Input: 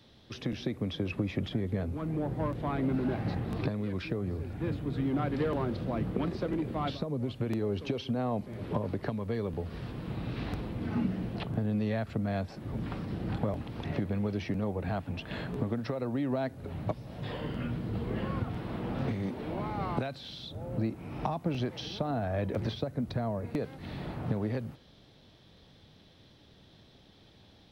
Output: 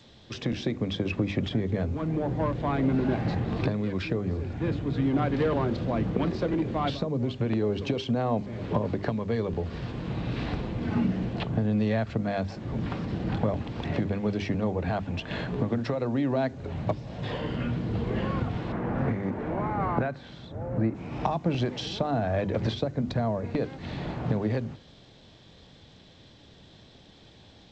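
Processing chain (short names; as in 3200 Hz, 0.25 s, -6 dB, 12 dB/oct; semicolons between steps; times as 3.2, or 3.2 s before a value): notch 1300 Hz, Q 23; 18.72–20.95 resonant high shelf 2500 Hz -12 dB, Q 1.5; notches 50/100/150/200/250/300/350/400 Hz; gain +5.5 dB; G.722 64 kbps 16000 Hz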